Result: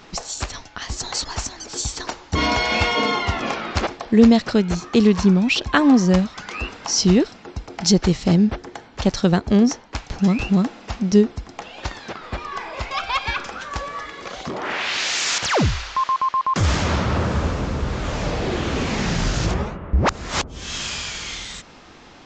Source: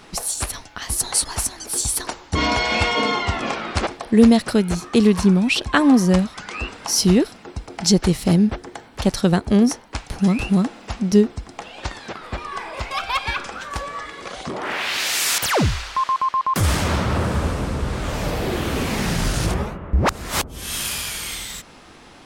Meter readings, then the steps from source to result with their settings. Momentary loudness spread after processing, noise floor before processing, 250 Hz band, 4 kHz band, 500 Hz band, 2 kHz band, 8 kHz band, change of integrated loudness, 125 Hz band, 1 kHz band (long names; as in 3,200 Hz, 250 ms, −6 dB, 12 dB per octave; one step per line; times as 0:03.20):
15 LU, −45 dBFS, 0.0 dB, 0.0 dB, 0.0 dB, 0.0 dB, −4.0 dB, −0.5 dB, 0.0 dB, 0.0 dB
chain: downsampling to 16,000 Hz